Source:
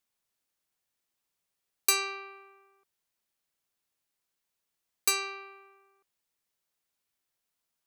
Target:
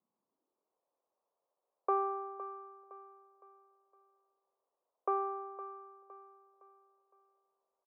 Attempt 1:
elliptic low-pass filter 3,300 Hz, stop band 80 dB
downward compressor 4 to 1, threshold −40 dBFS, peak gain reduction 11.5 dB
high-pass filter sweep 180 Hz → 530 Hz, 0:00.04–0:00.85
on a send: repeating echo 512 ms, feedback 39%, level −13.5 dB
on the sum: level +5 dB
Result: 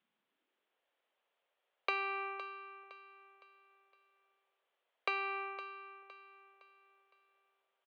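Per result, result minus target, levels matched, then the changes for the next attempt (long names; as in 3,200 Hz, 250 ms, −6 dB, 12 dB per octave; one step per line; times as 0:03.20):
downward compressor: peak gain reduction +11.5 dB; 1,000 Hz band −3.0 dB
remove: downward compressor 4 to 1, threshold −40 dBFS, peak gain reduction 11.5 dB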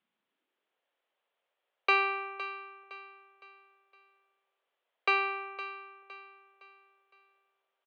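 1,000 Hz band −4.0 dB
change: elliptic low-pass filter 1,100 Hz, stop band 80 dB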